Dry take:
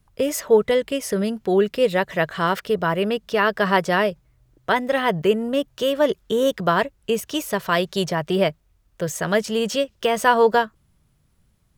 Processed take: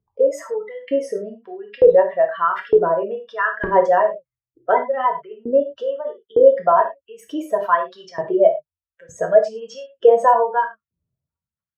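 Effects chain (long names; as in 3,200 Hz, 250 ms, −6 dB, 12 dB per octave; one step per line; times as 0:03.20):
expanding power law on the bin magnitudes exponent 2.1
auto-filter high-pass saw up 1.1 Hz 390–2,000 Hz
RIAA equalisation playback
reverb whose tail is shaped and stops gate 130 ms falling, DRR 1.5 dB
level −3 dB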